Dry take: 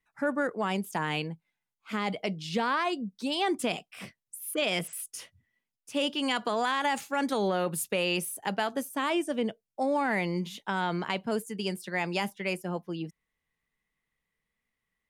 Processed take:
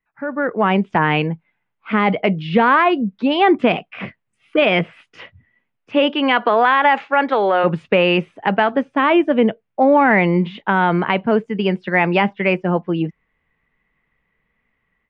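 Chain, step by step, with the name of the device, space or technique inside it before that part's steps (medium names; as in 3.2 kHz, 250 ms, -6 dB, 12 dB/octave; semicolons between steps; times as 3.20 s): 5.95–7.63 s: high-pass 230 Hz -> 520 Hz 12 dB/octave; action camera in a waterproof case (low-pass 2.6 kHz 24 dB/octave; level rider gain up to 15 dB; trim +1 dB; AAC 96 kbps 22.05 kHz)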